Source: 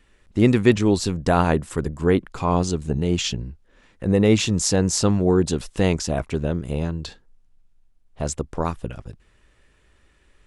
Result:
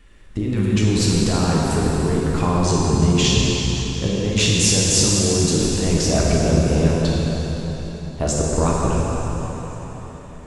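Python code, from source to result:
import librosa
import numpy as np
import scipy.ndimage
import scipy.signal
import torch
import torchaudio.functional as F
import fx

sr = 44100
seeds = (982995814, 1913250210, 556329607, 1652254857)

y = fx.low_shelf(x, sr, hz=110.0, db=5.0)
y = fx.over_compress(y, sr, threshold_db=-22.0, ratio=-1.0)
y = fx.rev_plate(y, sr, seeds[0], rt60_s=4.5, hf_ratio=0.85, predelay_ms=0, drr_db=-4.5)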